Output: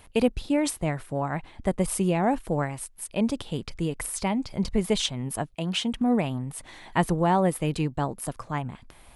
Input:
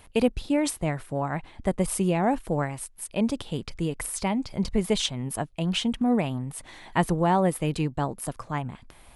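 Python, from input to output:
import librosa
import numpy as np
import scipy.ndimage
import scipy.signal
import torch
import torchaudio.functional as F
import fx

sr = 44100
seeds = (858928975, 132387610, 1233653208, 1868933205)

y = fx.highpass(x, sr, hz=180.0, slope=6, at=(5.54, 5.94))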